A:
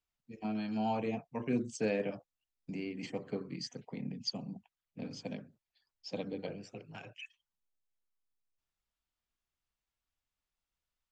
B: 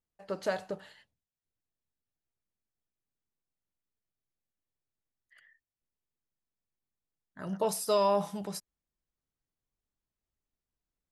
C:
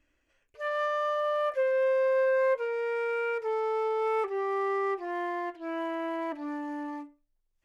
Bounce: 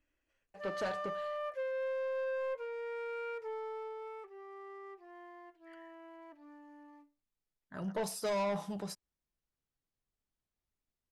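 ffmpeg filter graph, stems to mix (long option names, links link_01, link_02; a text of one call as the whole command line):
ffmpeg -i stem1.wav -i stem2.wav -i stem3.wav -filter_complex "[1:a]highshelf=frequency=9400:gain=-11,adelay=350,volume=-1dB[link_01];[2:a]volume=-9.5dB,afade=type=out:start_time=3.44:duration=0.77:silence=0.298538[link_02];[link_01][link_02]amix=inputs=2:normalize=0,asoftclip=type=tanh:threshold=-30dB" out.wav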